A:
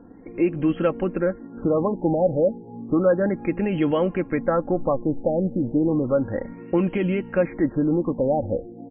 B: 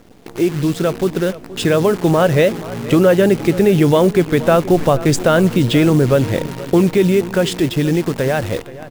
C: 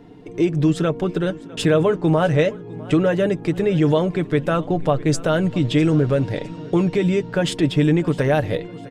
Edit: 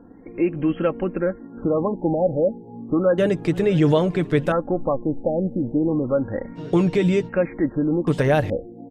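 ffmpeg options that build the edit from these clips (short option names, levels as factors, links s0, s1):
-filter_complex "[2:a]asplit=3[s0][s1][s2];[0:a]asplit=4[s3][s4][s5][s6];[s3]atrim=end=3.182[s7];[s0]atrim=start=3.178:end=4.522[s8];[s4]atrim=start=4.518:end=6.59[s9];[s1]atrim=start=6.55:end=7.3[s10];[s5]atrim=start=7.26:end=8.072[s11];[s2]atrim=start=8.068:end=8.502[s12];[s6]atrim=start=8.498[s13];[s7][s8]acrossfade=d=0.004:c1=hsin:c2=hsin[s14];[s14][s9]acrossfade=d=0.004:c1=hsin:c2=hsin[s15];[s15][s10]acrossfade=d=0.04:c1=tri:c2=tri[s16];[s16][s11]acrossfade=d=0.04:c1=tri:c2=tri[s17];[s17][s12]acrossfade=d=0.004:c1=hsin:c2=hsin[s18];[s18][s13]acrossfade=d=0.004:c1=hsin:c2=hsin"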